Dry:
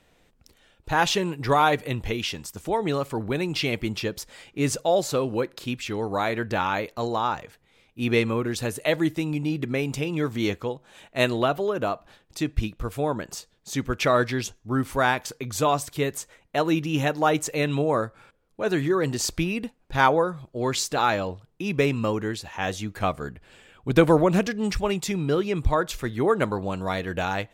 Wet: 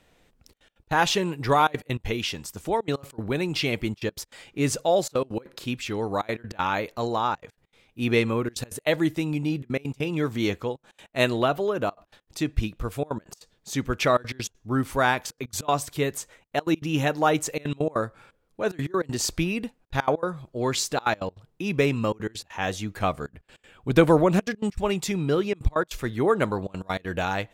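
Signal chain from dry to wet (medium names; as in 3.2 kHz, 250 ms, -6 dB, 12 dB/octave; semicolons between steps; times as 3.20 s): trance gate "xxxxxxx.x.x.xxx" 198 bpm -24 dB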